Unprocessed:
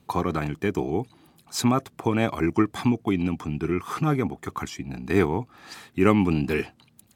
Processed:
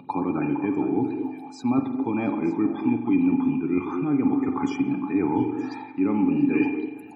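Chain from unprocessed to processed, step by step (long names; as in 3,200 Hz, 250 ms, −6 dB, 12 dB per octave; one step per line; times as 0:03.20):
high-pass filter 110 Hz 24 dB per octave
low-shelf EQ 460 Hz +6.5 dB
spectral peaks only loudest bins 64
reversed playback
downward compressor, threshold −28 dBFS, peak gain reduction 17 dB
reversed playback
hollow resonant body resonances 280/850/2,400 Hz, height 16 dB, ringing for 65 ms
upward compression, threshold −40 dBFS
bass and treble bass −3 dB, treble −6 dB
on a send: echo through a band-pass that steps 230 ms, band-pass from 340 Hz, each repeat 1.4 octaves, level −5 dB
on the sum: spring reverb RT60 1 s, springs 42 ms, chirp 50 ms, DRR 7 dB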